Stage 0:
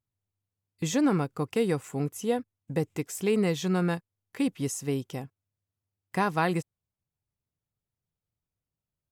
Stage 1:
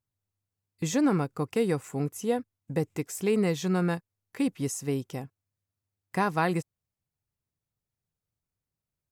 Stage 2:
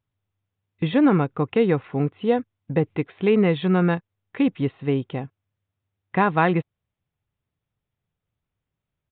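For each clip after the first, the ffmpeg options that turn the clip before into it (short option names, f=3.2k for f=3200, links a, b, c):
-af "equalizer=f=3.2k:t=o:w=0.48:g=-3.5"
-af "aresample=8000,aresample=44100,volume=7dB"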